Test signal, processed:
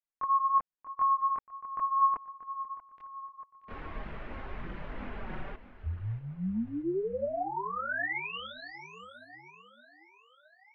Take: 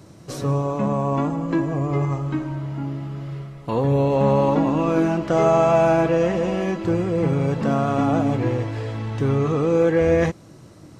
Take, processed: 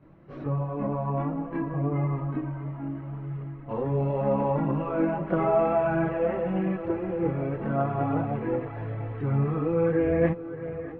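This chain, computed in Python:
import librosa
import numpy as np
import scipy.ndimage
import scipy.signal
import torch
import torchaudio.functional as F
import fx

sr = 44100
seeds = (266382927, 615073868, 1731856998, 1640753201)

p1 = scipy.signal.sosfilt(scipy.signal.butter(4, 2300.0, 'lowpass', fs=sr, output='sos'), x)
p2 = p1 + fx.echo_feedback(p1, sr, ms=633, feedback_pct=52, wet_db=-14.0, dry=0)
p3 = fx.chorus_voices(p2, sr, voices=6, hz=0.39, base_ms=24, depth_ms=3.8, mix_pct=65)
y = p3 * 10.0 ** (-4.5 / 20.0)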